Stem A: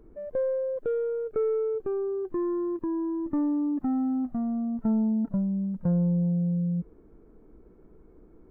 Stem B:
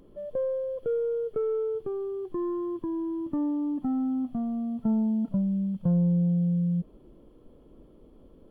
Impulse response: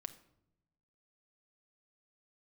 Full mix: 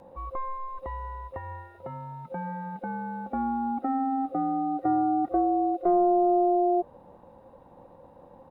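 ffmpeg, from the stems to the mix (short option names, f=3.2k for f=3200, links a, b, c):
-filter_complex "[0:a]alimiter=level_in=1.5dB:limit=-24dB:level=0:latency=1,volume=-1.5dB,volume=1dB[a];[1:a]adelay=0.5,volume=2dB[b];[a][b]amix=inputs=2:normalize=0,aeval=exprs='val(0)*sin(2*PI*530*n/s)':c=same"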